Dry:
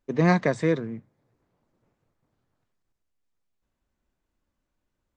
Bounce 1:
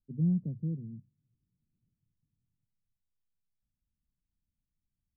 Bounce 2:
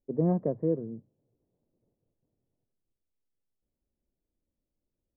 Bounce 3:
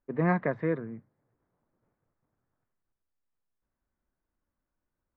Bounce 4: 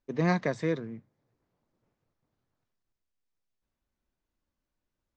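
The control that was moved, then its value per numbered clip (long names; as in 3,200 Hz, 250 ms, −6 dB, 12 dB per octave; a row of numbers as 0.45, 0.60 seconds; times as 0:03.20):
transistor ladder low-pass, frequency: 220, 670, 2,200, 7,700 Hertz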